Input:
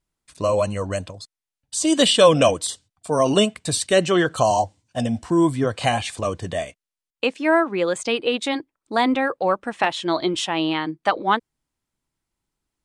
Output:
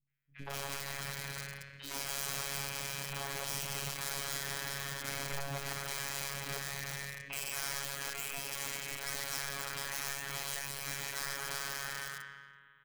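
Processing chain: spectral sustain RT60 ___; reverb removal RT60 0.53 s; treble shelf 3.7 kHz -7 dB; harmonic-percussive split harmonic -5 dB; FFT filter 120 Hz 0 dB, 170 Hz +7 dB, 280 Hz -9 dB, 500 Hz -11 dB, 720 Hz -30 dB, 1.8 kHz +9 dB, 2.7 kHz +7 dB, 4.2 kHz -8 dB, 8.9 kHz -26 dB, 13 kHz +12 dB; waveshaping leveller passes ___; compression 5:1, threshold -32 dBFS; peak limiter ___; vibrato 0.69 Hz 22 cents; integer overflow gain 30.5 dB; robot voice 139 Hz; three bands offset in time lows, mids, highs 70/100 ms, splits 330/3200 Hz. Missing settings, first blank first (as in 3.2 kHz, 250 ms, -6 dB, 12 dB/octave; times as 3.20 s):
2.21 s, 1, -24 dBFS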